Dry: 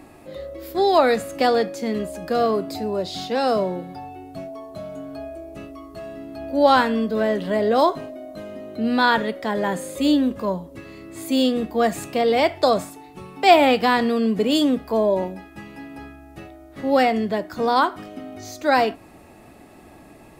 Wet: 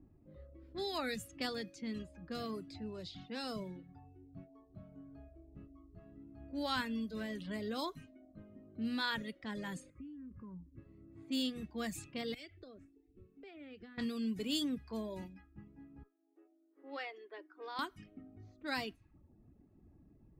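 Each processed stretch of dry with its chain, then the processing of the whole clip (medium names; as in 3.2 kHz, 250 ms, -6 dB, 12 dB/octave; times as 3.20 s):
9.90–10.78 s: static phaser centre 1.6 kHz, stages 4 + compression 12:1, threshold -29 dBFS
12.34–13.98 s: compression 4:1, threshold -26 dBFS + static phaser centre 380 Hz, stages 4
16.03–17.79 s: rippled Chebyshev high-pass 290 Hz, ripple 3 dB + distance through air 220 m
whole clip: level-controlled noise filter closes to 490 Hz, open at -18 dBFS; reverb removal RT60 0.59 s; amplifier tone stack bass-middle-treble 6-0-2; trim +4.5 dB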